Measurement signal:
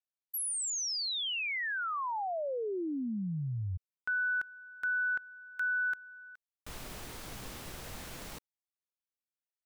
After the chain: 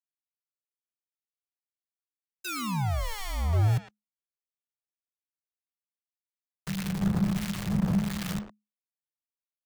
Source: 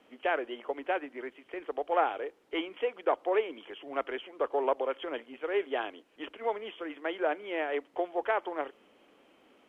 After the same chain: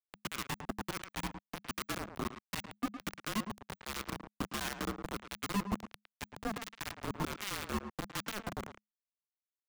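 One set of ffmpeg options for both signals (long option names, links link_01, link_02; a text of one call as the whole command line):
ffmpeg -i in.wav -filter_complex "[0:a]acrossover=split=180|560[link_01][link_02][link_03];[link_02]crystalizer=i=4:c=0[link_04];[link_03]alimiter=level_in=5dB:limit=-24dB:level=0:latency=1:release=33,volume=-5dB[link_05];[link_01][link_04][link_05]amix=inputs=3:normalize=0,aecho=1:1:2.1:0.48,acompressor=threshold=-39dB:ratio=8:attack=0.29:release=199:knee=1:detection=peak,aemphasis=mode=reproduction:type=riaa,acrusher=bits=5:mix=0:aa=0.000001,asplit=2[link_06][link_07];[link_07]adelay=110,highpass=300,lowpass=3400,asoftclip=type=hard:threshold=-33dB,volume=-9dB[link_08];[link_06][link_08]amix=inputs=2:normalize=0,acrossover=split=1500[link_09][link_10];[link_09]aeval=exprs='val(0)*(1-0.7/2+0.7/2*cos(2*PI*1.4*n/s))':channel_layout=same[link_11];[link_10]aeval=exprs='val(0)*(1-0.7/2-0.7/2*cos(2*PI*1.4*n/s))':channel_layout=same[link_12];[link_11][link_12]amix=inputs=2:normalize=0,afreqshift=-210,volume=6.5dB" -ar 44100 -c:a aac -b:a 192k out.aac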